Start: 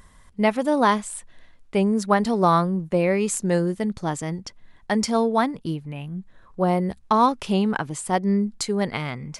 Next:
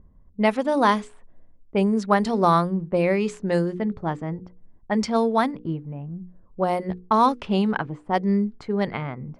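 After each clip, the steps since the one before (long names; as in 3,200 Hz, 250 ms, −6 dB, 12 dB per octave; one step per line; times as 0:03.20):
low-pass that shuts in the quiet parts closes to 360 Hz, open at −15 dBFS
mains-hum notches 60/120/180/240/300/360/420/480 Hz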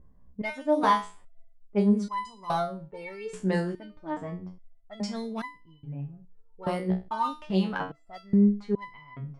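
in parallel at −3.5 dB: hard clipping −13.5 dBFS, distortion −18 dB
on the sum: step-sequenced resonator 2.4 Hz 62–1,000 Hz
level +1 dB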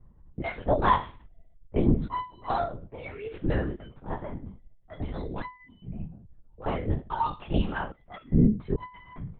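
linear-prediction vocoder at 8 kHz whisper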